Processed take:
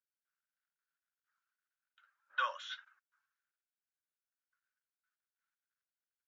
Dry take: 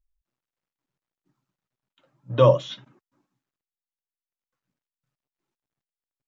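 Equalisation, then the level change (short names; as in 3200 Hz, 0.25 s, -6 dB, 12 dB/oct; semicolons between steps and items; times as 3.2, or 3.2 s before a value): ladder high-pass 1400 Hz, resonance 80%; +2.0 dB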